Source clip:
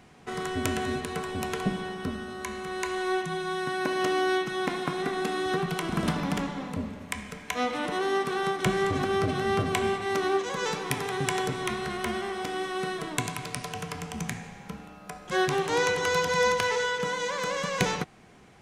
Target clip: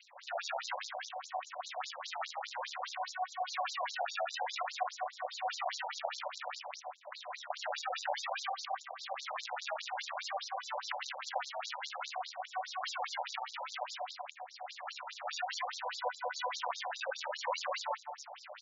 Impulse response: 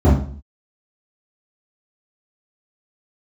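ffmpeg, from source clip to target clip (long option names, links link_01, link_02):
-filter_complex "[0:a]asplit=2[link_01][link_02];[1:a]atrim=start_sample=2205,adelay=147[link_03];[link_02][link_03]afir=irnorm=-1:irlink=0,volume=-24dB[link_04];[link_01][link_04]amix=inputs=2:normalize=0,aeval=exprs='0.794*(cos(1*acos(clip(val(0)/0.794,-1,1)))-cos(1*PI/2))+0.158*(cos(3*acos(clip(val(0)/0.794,-1,1)))-cos(3*PI/2))+0.0251*(cos(8*acos(clip(val(0)/0.794,-1,1)))-cos(8*PI/2))':channel_layout=same,asplit=7[link_05][link_06][link_07][link_08][link_09][link_10][link_11];[link_06]adelay=81,afreqshift=-32,volume=-14dB[link_12];[link_07]adelay=162,afreqshift=-64,volume=-18.7dB[link_13];[link_08]adelay=243,afreqshift=-96,volume=-23.5dB[link_14];[link_09]adelay=324,afreqshift=-128,volume=-28.2dB[link_15];[link_10]adelay=405,afreqshift=-160,volume=-32.9dB[link_16];[link_11]adelay=486,afreqshift=-192,volume=-37.7dB[link_17];[link_05][link_12][link_13][link_14][link_15][link_16][link_17]amix=inputs=7:normalize=0,acrossover=split=110|1200|2600[link_18][link_19][link_20][link_21];[link_18]acompressor=threshold=-32dB:ratio=4[link_22];[link_19]acompressor=threshold=-29dB:ratio=4[link_23];[link_20]acompressor=threshold=-49dB:ratio=4[link_24];[link_21]acompressor=threshold=-55dB:ratio=4[link_25];[link_22][link_23][link_24][link_25]amix=inputs=4:normalize=0,acrusher=samples=24:mix=1:aa=0.000001:lfo=1:lforange=38.4:lforate=0.54,acompressor=threshold=-38dB:ratio=6,afftfilt=real='re*between(b*sr/1024,690*pow(5300/690,0.5+0.5*sin(2*PI*4.9*pts/sr))/1.41,690*pow(5300/690,0.5+0.5*sin(2*PI*4.9*pts/sr))*1.41)':imag='im*between(b*sr/1024,690*pow(5300/690,0.5+0.5*sin(2*PI*4.9*pts/sr))/1.41,690*pow(5300/690,0.5+0.5*sin(2*PI*4.9*pts/sr))*1.41)':win_size=1024:overlap=0.75,volume=15.5dB"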